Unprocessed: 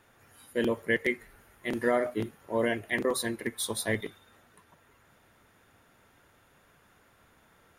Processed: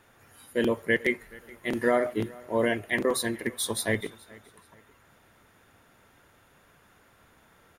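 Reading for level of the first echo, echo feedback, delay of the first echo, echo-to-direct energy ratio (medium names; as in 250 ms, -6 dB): -23.0 dB, 35%, 426 ms, -22.5 dB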